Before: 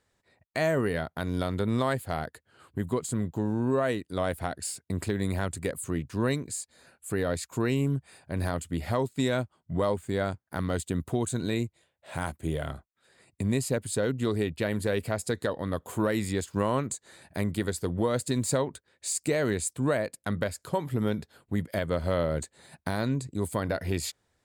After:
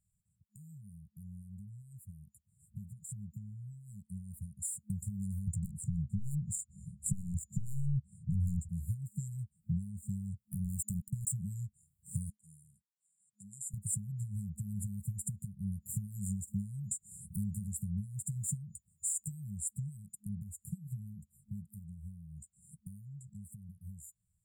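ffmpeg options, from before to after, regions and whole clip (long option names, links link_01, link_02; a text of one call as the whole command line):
ffmpeg -i in.wav -filter_complex "[0:a]asettb=1/sr,asplit=3[link_01][link_02][link_03];[link_01]atrim=end=5.474[link_04];[link_02]atrim=start=5.47:end=8.69,asetpts=PTS-STARTPTS,afade=type=in:duration=0.004:curve=qsin,afade=type=out:start_time=3.216:duration=0.004:curve=qsin,highpass=62,adynamicsmooth=sensitivity=5.5:basefreq=2600,aeval=exprs='0.188*sin(PI/2*3.98*val(0)/0.188)':channel_layout=same[link_05];[link_03]atrim=start=8.686[link_06];[link_04][link_05]acrossfade=duration=0.004:curve1=hsin:curve2=qsin[link_07];[link_07][link_06]acrossfade=duration=0.004:curve1=qsin:curve2=hsin,asettb=1/sr,asplit=3[link_08][link_09][link_10];[link_08]atrim=end=10.644[link_11];[link_09]atrim=start=10.64:end=11.32,asetpts=PTS-STARTPTS,afade=type=in:duration=0.004:curve=qsin,afade=type=out:start_time=0.676:duration=0.004:curve=qsin,highshelf=frequency=4100:gain=7.5,acrusher=bits=4:mix=0:aa=0.5[link_12];[link_10]atrim=start=11.316[link_13];[link_11][link_12]acrossfade=duration=0.004:curve1=hsin:curve2=qsin[link_14];[link_14][link_13]acrossfade=duration=0.004:curve1=qsin:curve2=hsin,asettb=1/sr,asplit=3[link_15][link_16][link_17];[link_15]atrim=end=12.304[link_18];[link_16]atrim=start=12.3:end=13.74,asetpts=PTS-STARTPTS,afade=type=in:duration=0.004:curve=qsin,afade=type=out:start_time=1.436:duration=0.004:curve=qsin,highpass=100,lowpass=3800,aderivative[link_19];[link_17]atrim=start=13.736[link_20];[link_18][link_19]acrossfade=duration=0.004:curve1=hsin:curve2=qsin[link_21];[link_21][link_20]acrossfade=duration=0.004:curve1=qsin:curve2=hsin,acompressor=threshold=-40dB:ratio=8,afftfilt=real='re*(1-between(b*sr/4096,210,7000))':imag='im*(1-between(b*sr/4096,210,7000))':win_size=4096:overlap=0.75,dynaudnorm=framelen=290:gausssize=31:maxgain=12dB,volume=-2dB" out.wav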